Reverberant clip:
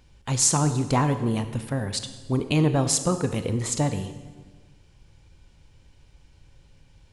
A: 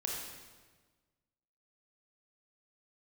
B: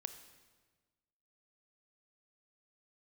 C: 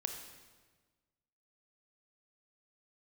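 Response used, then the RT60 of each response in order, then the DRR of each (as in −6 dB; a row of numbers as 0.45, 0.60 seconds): B; 1.4, 1.4, 1.4 seconds; −2.0, 9.5, 4.5 decibels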